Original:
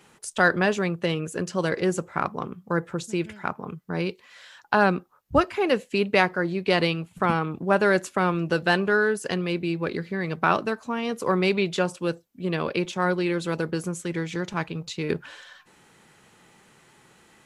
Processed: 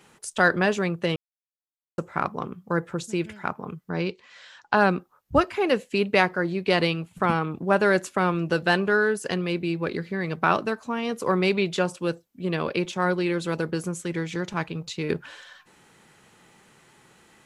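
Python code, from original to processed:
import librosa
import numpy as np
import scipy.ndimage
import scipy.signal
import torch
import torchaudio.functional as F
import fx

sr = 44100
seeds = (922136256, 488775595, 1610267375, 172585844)

y = fx.lowpass(x, sr, hz=7400.0, slope=24, at=(3.9, 4.77))
y = fx.edit(y, sr, fx.silence(start_s=1.16, length_s=0.82), tone=tone)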